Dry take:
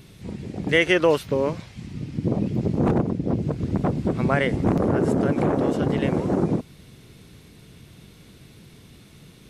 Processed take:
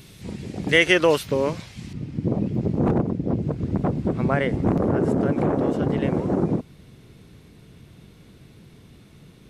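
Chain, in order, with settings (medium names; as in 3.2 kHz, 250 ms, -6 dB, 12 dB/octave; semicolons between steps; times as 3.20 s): treble shelf 2.2 kHz +6 dB, from 1.93 s -6.5 dB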